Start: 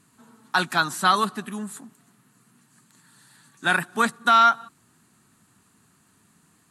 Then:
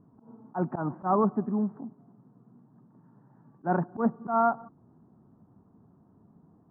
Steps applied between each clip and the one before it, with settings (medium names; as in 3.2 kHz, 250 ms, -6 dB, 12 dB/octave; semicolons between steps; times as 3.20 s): inverse Chebyshev low-pass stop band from 3.6 kHz, stop band 70 dB; slow attack 105 ms; trim +5 dB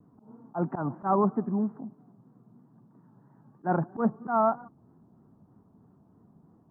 vibrato 3.1 Hz 93 cents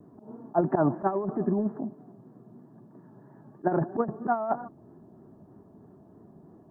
compressor with a negative ratio -28 dBFS, ratio -0.5; small resonant body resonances 380/610/1700 Hz, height 10 dB, ringing for 25 ms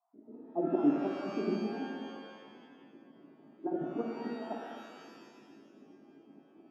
random holes in the spectrogram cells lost 35%; ladder band-pass 340 Hz, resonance 50%; pitch-shifted reverb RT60 1.8 s, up +12 st, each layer -8 dB, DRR 0.5 dB; trim +3 dB